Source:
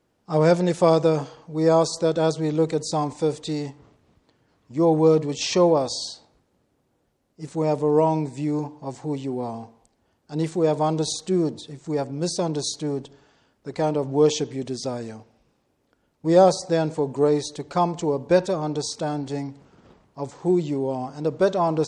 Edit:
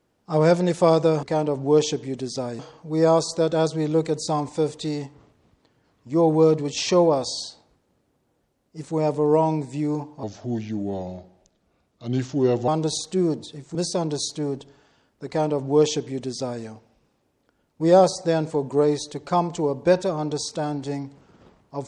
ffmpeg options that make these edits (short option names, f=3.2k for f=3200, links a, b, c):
-filter_complex "[0:a]asplit=6[a][b][c][d][e][f];[a]atrim=end=1.232[g];[b]atrim=start=13.708:end=15.072[h];[c]atrim=start=1.228:end=8.874[i];[d]atrim=start=8.87:end=10.83,asetpts=PTS-STARTPTS,asetrate=35280,aresample=44100[j];[e]atrim=start=10.826:end=11.902[k];[f]atrim=start=12.188[l];[g][h]acrossfade=d=0.004:c1=hsin:c2=hsin[m];[m][i]acrossfade=d=0.004:c1=hsin:c2=hsin[n];[n][j]acrossfade=d=0.004:c1=hsin:c2=hsin[o];[o][k]acrossfade=d=0.004:c1=hsin:c2=hsin[p];[p][l]acrossfade=d=0.004:c1=hsin:c2=hsin"